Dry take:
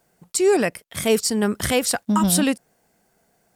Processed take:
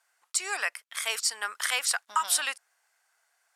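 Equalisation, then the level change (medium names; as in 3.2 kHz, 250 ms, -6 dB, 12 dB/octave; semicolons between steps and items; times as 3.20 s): ladder high-pass 950 Hz, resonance 30%; low-pass 11 kHz 12 dB/octave; +3.5 dB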